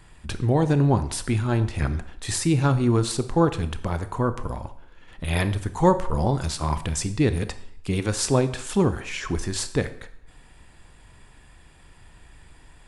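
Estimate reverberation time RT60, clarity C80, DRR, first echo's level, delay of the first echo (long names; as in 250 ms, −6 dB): 0.65 s, 16.5 dB, 11.0 dB, no echo audible, no echo audible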